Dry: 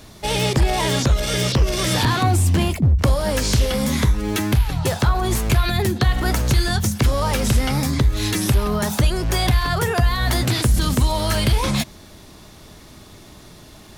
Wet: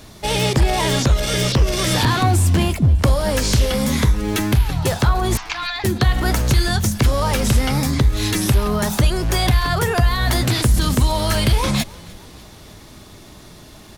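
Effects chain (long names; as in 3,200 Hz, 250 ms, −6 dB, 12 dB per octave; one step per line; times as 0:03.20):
0:05.37–0:05.84: elliptic band-pass filter 850–5,700 Hz
on a send: echo with shifted repeats 300 ms, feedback 61%, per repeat −39 Hz, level −23.5 dB
on the sum: level +1.5 dB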